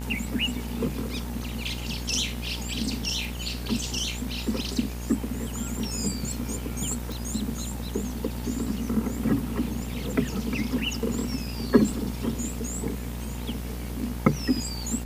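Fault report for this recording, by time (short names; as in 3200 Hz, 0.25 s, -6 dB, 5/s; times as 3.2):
buzz 60 Hz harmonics 38 -34 dBFS
7.12 pop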